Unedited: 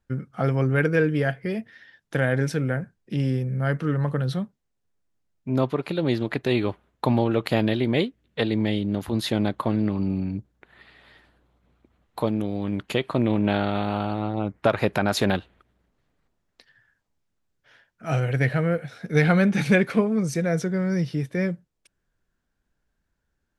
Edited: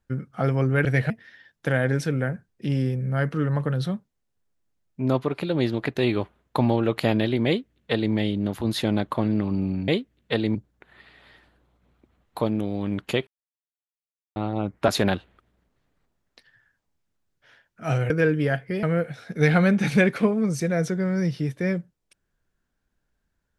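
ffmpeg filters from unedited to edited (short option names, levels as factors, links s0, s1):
-filter_complex "[0:a]asplit=10[s0][s1][s2][s3][s4][s5][s6][s7][s8][s9];[s0]atrim=end=0.852[s10];[s1]atrim=start=18.318:end=18.572[s11];[s2]atrim=start=1.578:end=10.362[s12];[s3]atrim=start=7.948:end=8.622[s13];[s4]atrim=start=10.358:end=13.08,asetpts=PTS-STARTPTS,afade=t=out:st=2.718:d=0.004:c=hsin[s14];[s5]atrim=start=13.08:end=14.17,asetpts=PTS-STARTPTS,volume=0[s15];[s6]atrim=start=14.17:end=14.692,asetpts=PTS-STARTPTS,afade=t=in:d=0.004:c=hsin[s16];[s7]atrim=start=15.098:end=18.322[s17];[s8]atrim=start=0.848:end=1.582[s18];[s9]atrim=start=18.568[s19];[s10][s11]acrossfade=d=0.004:c1=hsin:c2=hsin[s20];[s20][s12]acrossfade=d=0.004:c1=hsin:c2=hsin[s21];[s21][s13]acrossfade=d=0.004:c1=hsin:c2=hsin[s22];[s14][s15][s16]concat=n=3:v=0:a=1[s23];[s22][s23]acrossfade=d=0.004:c1=hsin:c2=hsin[s24];[s24][s17]acrossfade=d=0.004:c1=hsin:c2=hsin[s25];[s25][s18]acrossfade=d=0.004:c1=hsin:c2=hsin[s26];[s26][s19]acrossfade=d=0.004:c1=hsin:c2=hsin"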